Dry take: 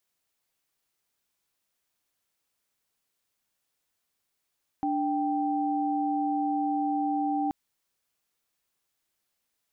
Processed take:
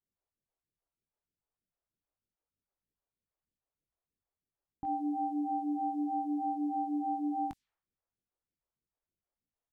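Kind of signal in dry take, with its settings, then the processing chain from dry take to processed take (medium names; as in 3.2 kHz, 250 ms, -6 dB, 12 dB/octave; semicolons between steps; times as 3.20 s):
chord D4/G5 sine, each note -27.5 dBFS 2.68 s
phase shifter stages 2, 3.2 Hz, lowest notch 160–1000 Hz; doubling 21 ms -12 dB; level-controlled noise filter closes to 610 Hz, open at -33 dBFS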